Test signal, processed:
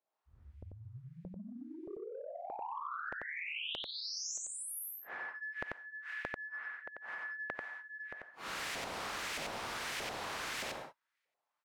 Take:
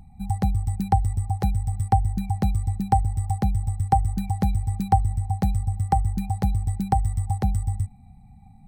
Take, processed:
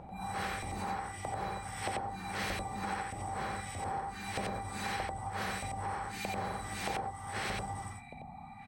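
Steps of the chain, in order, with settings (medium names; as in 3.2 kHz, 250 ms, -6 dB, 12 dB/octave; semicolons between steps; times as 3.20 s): phase randomisation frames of 200 ms; LFO band-pass saw up 1.6 Hz 570–2400 Hz; compression 3:1, threshold -46 dBFS; on a send: delay 91 ms -3 dB; on the sum: spectrum-flattening compressor 2:1; trim +10 dB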